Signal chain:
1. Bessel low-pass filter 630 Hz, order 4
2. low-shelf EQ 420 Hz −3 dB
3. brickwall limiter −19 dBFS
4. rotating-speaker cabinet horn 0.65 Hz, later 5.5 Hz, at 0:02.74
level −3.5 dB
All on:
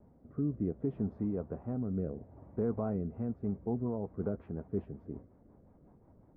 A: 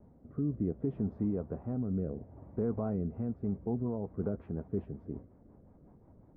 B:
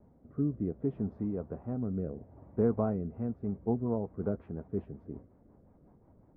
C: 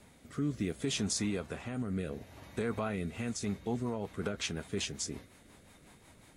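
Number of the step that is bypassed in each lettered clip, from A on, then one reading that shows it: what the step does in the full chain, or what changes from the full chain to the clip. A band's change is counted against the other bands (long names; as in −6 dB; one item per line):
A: 2, 1 kHz band −2.0 dB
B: 3, change in crest factor +4.5 dB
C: 1, 1 kHz band +5.5 dB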